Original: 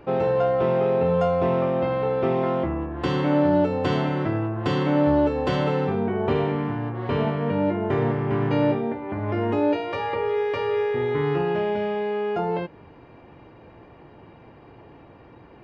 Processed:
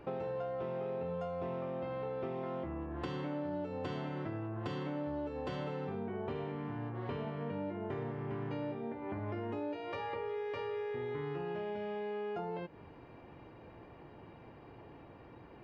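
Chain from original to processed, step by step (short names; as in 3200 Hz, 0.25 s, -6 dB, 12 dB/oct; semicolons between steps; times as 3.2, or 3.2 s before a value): compressor 5:1, threshold -31 dBFS, peak gain reduction 14 dB; gain -6 dB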